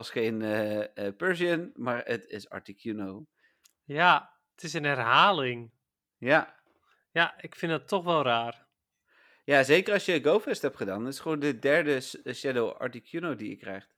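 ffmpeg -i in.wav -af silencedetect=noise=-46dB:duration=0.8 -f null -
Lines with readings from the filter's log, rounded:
silence_start: 8.54
silence_end: 9.48 | silence_duration: 0.94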